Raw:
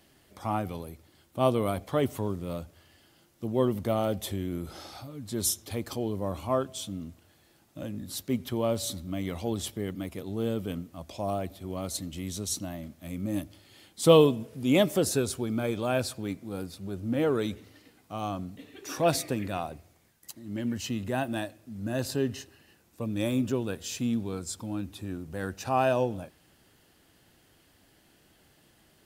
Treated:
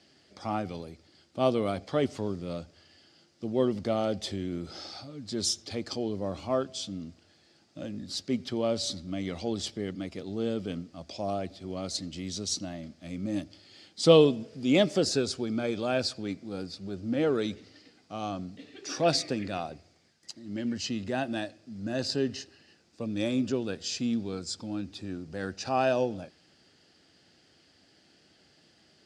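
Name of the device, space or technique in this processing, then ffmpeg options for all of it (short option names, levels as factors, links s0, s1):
car door speaker: -af "highpass=100,equalizer=f=120:t=q:w=4:g=-5,equalizer=f=1000:t=q:w=4:g=-7,equalizer=f=4800:t=q:w=4:g=10,lowpass=f=7300:w=0.5412,lowpass=f=7300:w=1.3066"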